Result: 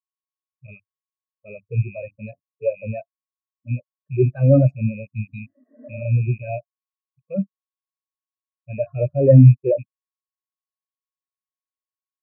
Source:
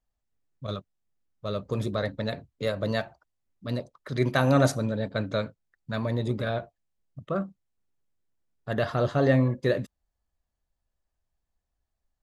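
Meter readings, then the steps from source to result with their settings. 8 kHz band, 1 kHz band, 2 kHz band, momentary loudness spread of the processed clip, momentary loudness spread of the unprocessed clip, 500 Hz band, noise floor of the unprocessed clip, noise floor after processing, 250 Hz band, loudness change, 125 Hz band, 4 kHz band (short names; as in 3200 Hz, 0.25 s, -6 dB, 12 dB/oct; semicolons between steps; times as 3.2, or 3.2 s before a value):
under -35 dB, n/a, -7.5 dB, 21 LU, 16 LU, +5.0 dB, -82 dBFS, under -85 dBFS, +5.5 dB, +9.0 dB, +11.5 dB, under -35 dB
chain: rattling part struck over -34 dBFS, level -14 dBFS; notches 50/100/150 Hz; spectral repair 5.14–6.02, 230–2000 Hz both; dynamic EQ 210 Hz, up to -3 dB, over -32 dBFS, Q 0.89; sample leveller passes 3; in parallel at +1 dB: limiter -13 dBFS, peak gain reduction 6.5 dB; on the sum: soft clip -8 dBFS, distortion -16 dB; whine 1100 Hz -37 dBFS; spectral expander 4:1; gain +7 dB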